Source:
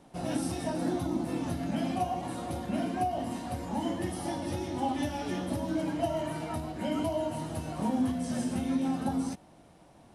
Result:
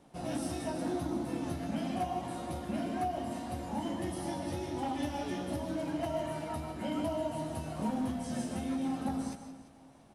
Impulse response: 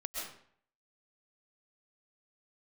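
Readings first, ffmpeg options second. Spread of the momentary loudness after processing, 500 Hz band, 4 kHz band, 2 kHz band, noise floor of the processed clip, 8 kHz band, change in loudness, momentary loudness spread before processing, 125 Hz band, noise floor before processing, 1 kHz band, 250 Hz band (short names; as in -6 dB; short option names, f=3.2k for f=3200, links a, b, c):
4 LU, -2.5 dB, -3.0 dB, -3.0 dB, -57 dBFS, -3.5 dB, -3.5 dB, 6 LU, -4.0 dB, -57 dBFS, -3.0 dB, -4.0 dB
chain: -filter_complex "[0:a]asoftclip=type=hard:threshold=-24dB,aecho=1:1:345|690|1035:0.126|0.0478|0.0182,asplit=2[a][b];[1:a]atrim=start_sample=2205,adelay=14[c];[b][c]afir=irnorm=-1:irlink=0,volume=-7.5dB[d];[a][d]amix=inputs=2:normalize=0,volume=-4dB"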